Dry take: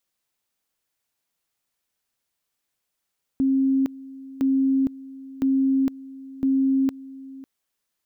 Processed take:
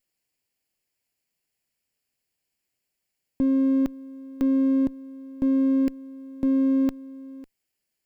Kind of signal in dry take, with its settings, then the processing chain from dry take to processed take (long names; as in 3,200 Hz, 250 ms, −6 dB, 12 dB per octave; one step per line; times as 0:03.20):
tone at two levels in turn 268 Hz −17 dBFS, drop 19.5 dB, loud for 0.46 s, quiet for 0.55 s, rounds 4
lower of the sound and its delayed copy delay 0.41 ms